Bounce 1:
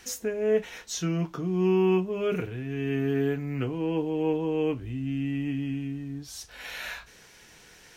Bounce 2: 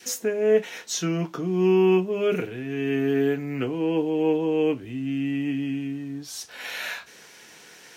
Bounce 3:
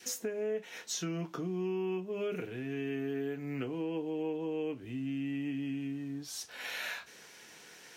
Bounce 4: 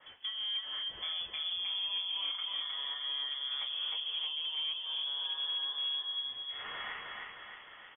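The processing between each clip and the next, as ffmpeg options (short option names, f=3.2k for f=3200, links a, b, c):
-af "highpass=200,adynamicequalizer=threshold=0.00316:dfrequency=1100:dqfactor=2.1:tfrequency=1100:tqfactor=2.1:attack=5:release=100:ratio=0.375:range=2:mode=cutabove:tftype=bell,volume=5dB"
-af "acompressor=threshold=-28dB:ratio=4,volume=-5.5dB"
-filter_complex "[0:a]asplit=2[a][b];[b]aecho=0:1:310|620|930|1240|1550|1860|2170:0.708|0.375|0.199|0.105|0.0559|0.0296|0.0157[c];[a][c]amix=inputs=2:normalize=0,asoftclip=type=hard:threshold=-29dB,lowpass=f=3.1k:t=q:w=0.5098,lowpass=f=3.1k:t=q:w=0.6013,lowpass=f=3.1k:t=q:w=0.9,lowpass=f=3.1k:t=q:w=2.563,afreqshift=-3600,volume=-2.5dB"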